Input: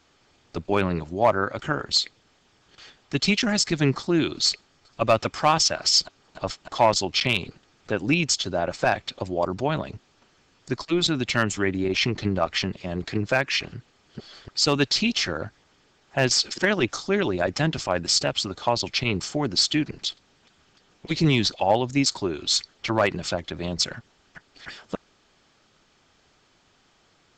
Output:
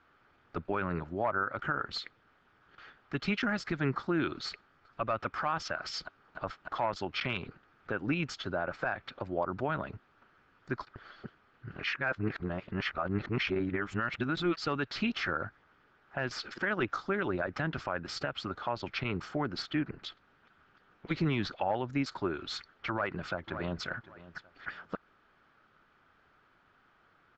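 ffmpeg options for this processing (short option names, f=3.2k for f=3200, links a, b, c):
-filter_complex "[0:a]asettb=1/sr,asplit=3[a][b][c];[a]atrim=end=19.624[d];[b]atrim=start=19.62:end=20.03,asetpts=PTS-STARTPTS,afade=t=in:d=0.004:c=qsin,afade=t=out:st=0.406:d=0.004:c=qsin,lowpass=f=2.6k:p=1[e];[c]atrim=start=20.026[f];[d][e]acrossfade=d=0.004:c1=hsin:c2=qsin[g];[g][f]acrossfade=d=0.004:c1=qsin:c2=hsin,asplit=2[h][i];[i]afade=t=in:st=22.91:d=0.01,afade=t=out:st=23.85:d=0.01,aecho=0:1:560|1120:0.133352|0.0266704[j];[h][j]amix=inputs=2:normalize=0,asplit=3[k][l][m];[k]atrim=end=10.872[n];[l]atrim=start=10.868:end=14.572,asetpts=PTS-STARTPTS,areverse[o];[m]atrim=start=14.568[p];[n][o]acrossfade=d=0.004:c1=hsin:c2=hsin[q];[q][p]acrossfade=d=0.004:c1=hsin:c2=hsin,lowpass=2.4k,equalizer=f=1.4k:w=2.1:g=11,alimiter=limit=-14dB:level=0:latency=1:release=133,volume=-6.5dB"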